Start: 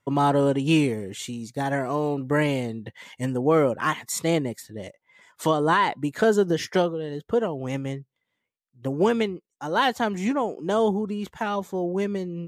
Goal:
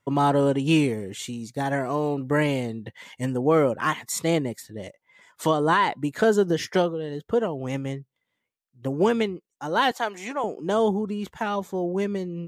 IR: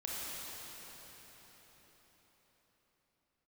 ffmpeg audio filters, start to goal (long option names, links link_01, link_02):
-filter_complex "[0:a]asettb=1/sr,asplit=3[link_01][link_02][link_03];[link_01]atrim=end=9.914[link_04];[link_02]atrim=start=9.91:end=10.44,asetpts=PTS-STARTPTS,afade=type=in:duration=0.004:curve=qsin,afade=type=out:start_time=0.526:duration=0.004:curve=qsin,highpass=510[link_05];[link_03]atrim=start=10.436[link_06];[link_04][link_05]acrossfade=duration=0.004:curve1=hsin:curve2=qsin[link_07];[link_07][link_06]acrossfade=duration=0.004:curve1=qsin:curve2=hsin"